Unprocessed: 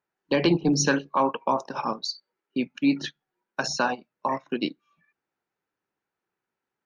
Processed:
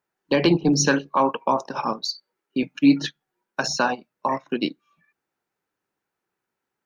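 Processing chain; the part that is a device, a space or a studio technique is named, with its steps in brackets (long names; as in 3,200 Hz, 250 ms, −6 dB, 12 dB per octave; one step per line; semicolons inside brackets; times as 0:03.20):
exciter from parts (in parallel at −13.5 dB: high-pass filter 3,900 Hz 12 dB per octave + soft clipping −34 dBFS, distortion −5 dB)
0:02.62–0:03.07: on the sum: comb filter 6.5 ms, depth 76%
level +3 dB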